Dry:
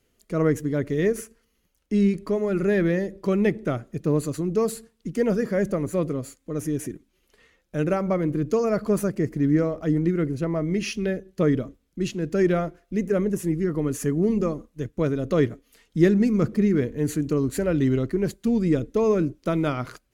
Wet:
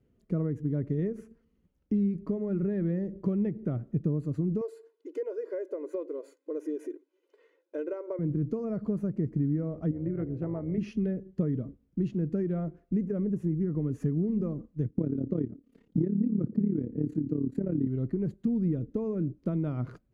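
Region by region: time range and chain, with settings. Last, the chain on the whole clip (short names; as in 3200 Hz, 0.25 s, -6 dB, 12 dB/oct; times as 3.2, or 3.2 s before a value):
4.61–8.19 brick-wall FIR high-pass 270 Hz + comb 2 ms, depth 70%
9.91–10.78 tone controls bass -9 dB, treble -14 dB + AM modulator 220 Hz, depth 35% + notches 50/100/150/200/250/300/350/400/450/500 Hz
14.9–17.87 bell 280 Hz +11 dB 1.5 oct + AM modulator 35 Hz, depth 65%
whole clip: compressor 6:1, threshold -29 dBFS; LPF 1200 Hz 6 dB/oct; bell 140 Hz +14.5 dB 3 oct; gain -8 dB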